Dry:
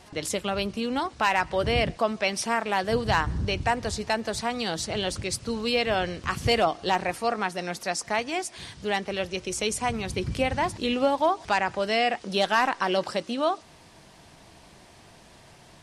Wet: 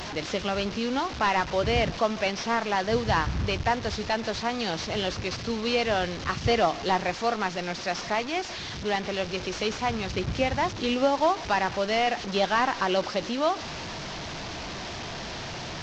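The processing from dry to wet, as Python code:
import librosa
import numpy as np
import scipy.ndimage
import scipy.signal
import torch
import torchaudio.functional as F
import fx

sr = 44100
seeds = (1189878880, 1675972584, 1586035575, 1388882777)

y = fx.delta_mod(x, sr, bps=32000, step_db=-29.5)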